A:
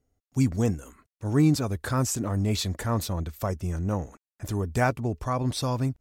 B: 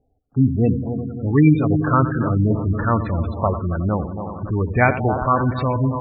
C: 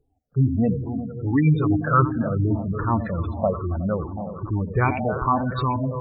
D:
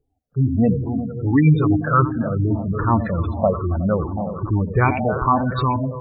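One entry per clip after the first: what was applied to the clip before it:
echo machine with several playback heads 91 ms, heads first and third, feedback 72%, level −11.5 dB; auto-filter low-pass saw up 1.2 Hz 820–3,100 Hz; gate on every frequency bin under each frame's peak −20 dB strong; level +6.5 dB
rippled gain that drifts along the octave scale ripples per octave 0.62, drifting −2.5 Hz, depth 18 dB; level −6.5 dB
automatic gain control gain up to 10 dB; level −3 dB

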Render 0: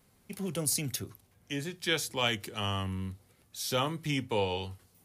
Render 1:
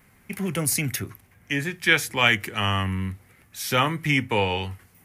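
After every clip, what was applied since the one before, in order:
octave-band graphic EQ 500/2,000/4,000/8,000 Hz −4/+10/−8/−3 dB
level +8.5 dB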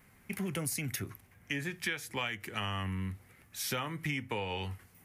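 downward compressor 12 to 1, threshold −27 dBFS, peak gain reduction 15 dB
level −4.5 dB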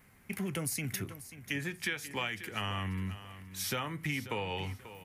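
repeating echo 538 ms, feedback 28%, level −14 dB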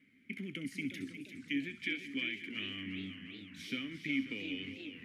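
formant filter i
delay with a high-pass on its return 65 ms, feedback 48%, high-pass 2,400 Hz, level −11 dB
feedback echo with a swinging delay time 351 ms, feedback 56%, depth 175 cents, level −9.5 dB
level +7.5 dB

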